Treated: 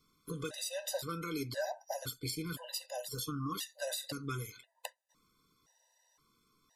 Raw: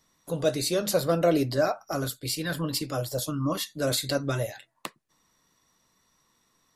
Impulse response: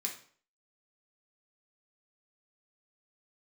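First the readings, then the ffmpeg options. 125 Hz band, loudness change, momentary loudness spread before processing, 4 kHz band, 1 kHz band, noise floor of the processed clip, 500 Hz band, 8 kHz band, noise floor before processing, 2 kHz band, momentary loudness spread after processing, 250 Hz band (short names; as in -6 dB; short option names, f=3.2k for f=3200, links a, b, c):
-11.5 dB, -12.0 dB, 12 LU, -9.0 dB, -10.0 dB, -75 dBFS, -14.5 dB, -8.0 dB, -70 dBFS, -9.5 dB, 8 LU, -12.5 dB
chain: -filter_complex "[0:a]acrossover=split=1100|6900[a][b][c];[a]acompressor=threshold=-36dB:ratio=4[d];[b]acompressor=threshold=-37dB:ratio=4[e];[c]acompressor=threshold=-38dB:ratio=4[f];[d][e][f]amix=inputs=3:normalize=0,afftfilt=real='re*gt(sin(2*PI*0.97*pts/sr)*(1-2*mod(floor(b*sr/1024/510),2)),0)':imag='im*gt(sin(2*PI*0.97*pts/sr)*(1-2*mod(floor(b*sr/1024/510),2)),0)':win_size=1024:overlap=0.75,volume=-1dB"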